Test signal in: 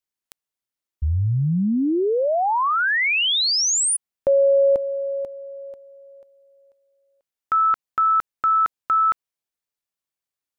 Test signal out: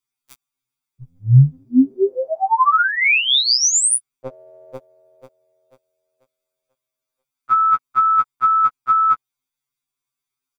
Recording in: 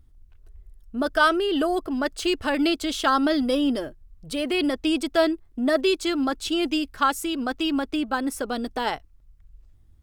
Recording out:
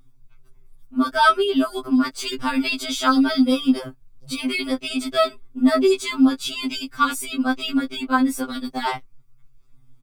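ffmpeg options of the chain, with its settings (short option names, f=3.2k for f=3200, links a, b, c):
-af "aecho=1:1:6.9:0.66,afftfilt=real='re*2.45*eq(mod(b,6),0)':imag='im*2.45*eq(mod(b,6),0)':win_size=2048:overlap=0.75,volume=4.5dB"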